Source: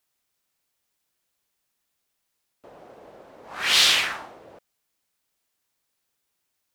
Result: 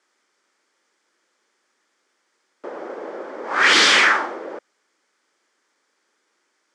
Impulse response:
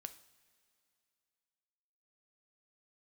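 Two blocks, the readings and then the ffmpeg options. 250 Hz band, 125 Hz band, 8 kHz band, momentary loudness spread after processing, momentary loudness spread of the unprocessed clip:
+15.0 dB, can't be measured, +1.5 dB, 22 LU, 14 LU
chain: -filter_complex "[0:a]asplit=2[link_01][link_02];[link_02]highpass=frequency=720:poles=1,volume=20dB,asoftclip=type=tanh:threshold=-3.5dB[link_03];[link_01][link_03]amix=inputs=2:normalize=0,lowpass=frequency=1500:poles=1,volume=-6dB,highpass=frequency=220:width=0.5412,highpass=frequency=220:width=1.3066,equalizer=frequency=350:width_type=q:width=4:gain=4,equalizer=frequency=700:width_type=q:width=4:gain=-9,equalizer=frequency=1000:width_type=q:width=4:gain=-4,equalizer=frequency=2700:width_type=q:width=4:gain=-9,equalizer=frequency=3900:width_type=q:width=4:gain=-7,lowpass=frequency=8000:width=0.5412,lowpass=frequency=8000:width=1.3066,volume=7.5dB"

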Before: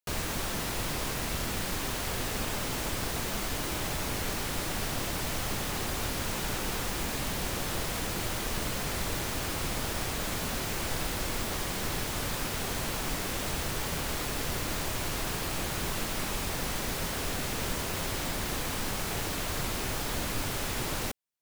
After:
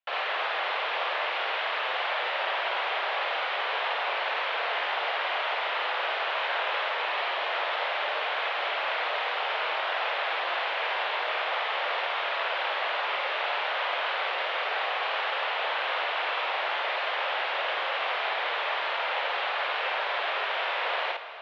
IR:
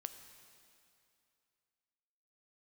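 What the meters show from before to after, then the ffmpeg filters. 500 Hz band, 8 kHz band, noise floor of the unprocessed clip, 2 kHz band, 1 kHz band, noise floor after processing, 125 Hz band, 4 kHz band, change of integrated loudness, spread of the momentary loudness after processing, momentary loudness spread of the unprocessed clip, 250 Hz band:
+5.0 dB, below −25 dB, −34 dBFS, +9.0 dB, +9.5 dB, −31 dBFS, below −40 dB, +4.5 dB, +4.0 dB, 0 LU, 0 LU, below −15 dB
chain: -filter_complex "[0:a]asplit=2[link_01][link_02];[1:a]atrim=start_sample=2205,asetrate=27783,aresample=44100,adelay=52[link_03];[link_02][link_03]afir=irnorm=-1:irlink=0,volume=0.5dB[link_04];[link_01][link_04]amix=inputs=2:normalize=0,highpass=frequency=450:width_type=q:width=0.5412,highpass=frequency=450:width_type=q:width=1.307,lowpass=frequency=3300:width_type=q:width=0.5176,lowpass=frequency=3300:width_type=q:width=0.7071,lowpass=frequency=3300:width_type=q:width=1.932,afreqshift=120,volume=6dB"

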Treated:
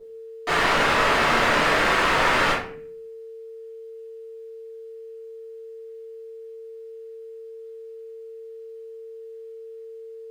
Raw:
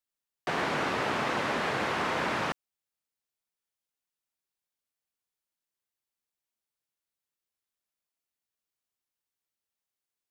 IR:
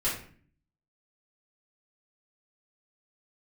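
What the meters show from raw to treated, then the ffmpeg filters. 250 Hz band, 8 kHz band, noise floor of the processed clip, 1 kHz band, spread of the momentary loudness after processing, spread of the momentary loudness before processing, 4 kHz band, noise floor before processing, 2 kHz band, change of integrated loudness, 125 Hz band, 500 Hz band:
+5.5 dB, +11.0 dB, −40 dBFS, +9.5 dB, 8 LU, 5 LU, +11.5 dB, below −85 dBFS, +11.5 dB, +10.0 dB, +6.0 dB, +9.5 dB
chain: -filter_complex "[0:a]asplit=2[link_01][link_02];[link_02]highpass=frequency=720:poles=1,volume=26dB,asoftclip=type=tanh:threshold=-17dB[link_03];[link_01][link_03]amix=inputs=2:normalize=0,lowpass=frequency=3900:poles=1,volume=-6dB,aeval=exprs='val(0)+0.00631*sin(2*PI*450*n/s)':channel_layout=same[link_04];[1:a]atrim=start_sample=2205[link_05];[link_04][link_05]afir=irnorm=-1:irlink=0,volume=-4.5dB"

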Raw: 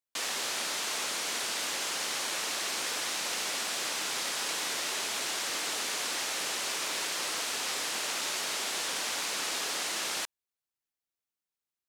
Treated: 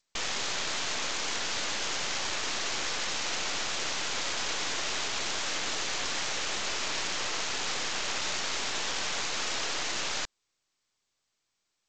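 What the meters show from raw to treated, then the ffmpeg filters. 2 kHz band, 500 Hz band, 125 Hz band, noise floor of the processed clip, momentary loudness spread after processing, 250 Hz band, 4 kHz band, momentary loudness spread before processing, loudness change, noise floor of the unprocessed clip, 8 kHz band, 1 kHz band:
+1.5 dB, +1.5 dB, +9.5 dB, −81 dBFS, 0 LU, +2.5 dB, +1.0 dB, 0 LU, 0.0 dB, below −85 dBFS, −1.5 dB, +1.5 dB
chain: -af "aeval=exprs='0.112*(cos(1*acos(clip(val(0)/0.112,-1,1)))-cos(1*PI/2))+0.000631*(cos(2*acos(clip(val(0)/0.112,-1,1)))-cos(2*PI/2))+0.00112*(cos(4*acos(clip(val(0)/0.112,-1,1)))-cos(4*PI/2))+0.00158*(cos(5*acos(clip(val(0)/0.112,-1,1)))-cos(5*PI/2))+0.02*(cos(8*acos(clip(val(0)/0.112,-1,1)))-cos(8*PI/2))':channel_layout=same" -ar 16000 -c:a g722

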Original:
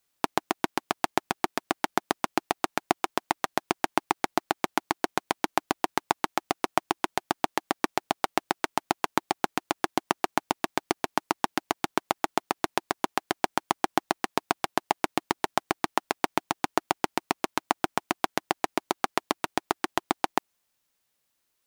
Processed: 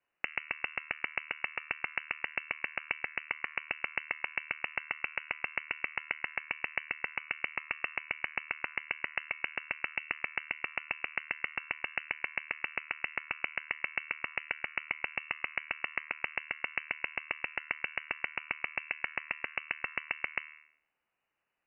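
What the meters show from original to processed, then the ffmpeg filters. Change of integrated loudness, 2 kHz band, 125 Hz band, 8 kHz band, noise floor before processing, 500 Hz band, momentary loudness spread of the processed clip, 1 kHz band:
−6.0 dB, +1.0 dB, −15.0 dB, below −40 dB, −77 dBFS, −18.5 dB, 1 LU, −17.0 dB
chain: -af "bandreject=frequency=76.46:width_type=h:width=4,bandreject=frequency=152.92:width_type=h:width=4,bandreject=frequency=229.38:width_type=h:width=4,bandreject=frequency=305.84:width_type=h:width=4,bandreject=frequency=382.3:width_type=h:width=4,bandreject=frequency=458.76:width_type=h:width=4,bandreject=frequency=535.22:width_type=h:width=4,bandreject=frequency=611.68:width_type=h:width=4,bandreject=frequency=688.14:width_type=h:width=4,bandreject=frequency=764.6:width_type=h:width=4,bandreject=frequency=841.06:width_type=h:width=4,bandreject=frequency=917.52:width_type=h:width=4,bandreject=frequency=993.98:width_type=h:width=4,bandreject=frequency=1070.44:width_type=h:width=4,bandreject=frequency=1146.9:width_type=h:width=4,bandreject=frequency=1223.36:width_type=h:width=4,bandreject=frequency=1299.82:width_type=h:width=4,bandreject=frequency=1376.28:width_type=h:width=4,bandreject=frequency=1452.74:width_type=h:width=4,bandreject=frequency=1529.2:width_type=h:width=4,bandreject=frequency=1605.66:width_type=h:width=4,bandreject=frequency=1682.12:width_type=h:width=4,bandreject=frequency=1758.58:width_type=h:width=4,bandreject=frequency=1835.04:width_type=h:width=4,bandreject=frequency=1911.5:width_type=h:width=4,bandreject=frequency=1987.96:width_type=h:width=4,acompressor=threshold=-30dB:ratio=4,lowpass=frequency=2600:width_type=q:width=0.5098,lowpass=frequency=2600:width_type=q:width=0.6013,lowpass=frequency=2600:width_type=q:width=0.9,lowpass=frequency=2600:width_type=q:width=2.563,afreqshift=-3000"

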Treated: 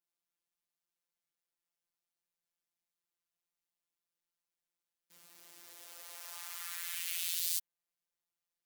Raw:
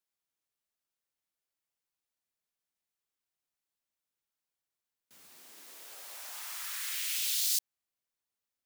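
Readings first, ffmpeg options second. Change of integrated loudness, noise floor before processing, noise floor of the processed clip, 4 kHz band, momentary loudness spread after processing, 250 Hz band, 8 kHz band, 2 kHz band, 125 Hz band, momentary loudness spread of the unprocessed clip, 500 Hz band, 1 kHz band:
−5.0 dB, below −85 dBFS, below −85 dBFS, −6.0 dB, 20 LU, −2.5 dB, −5.5 dB, −4.0 dB, can't be measured, 20 LU, −3.5 dB, −3.5 dB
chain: -af "acrusher=bits=9:mode=log:mix=0:aa=0.000001,adynamicequalizer=threshold=0.00398:dfrequency=5600:dqfactor=1.1:tfrequency=5600:tqfactor=1.1:attack=5:release=100:ratio=0.375:range=2.5:mode=cutabove:tftype=bell,afftfilt=real='hypot(re,im)*cos(PI*b)':imag='0':win_size=1024:overlap=0.75"

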